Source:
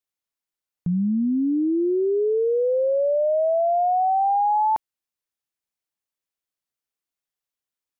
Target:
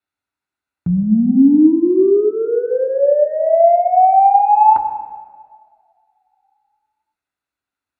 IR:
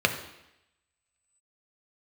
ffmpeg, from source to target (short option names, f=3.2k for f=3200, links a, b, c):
-filter_complex "[0:a]acontrast=48[a];[1:a]atrim=start_sample=2205,asetrate=24696,aresample=44100[b];[a][b]afir=irnorm=-1:irlink=0,volume=-15dB"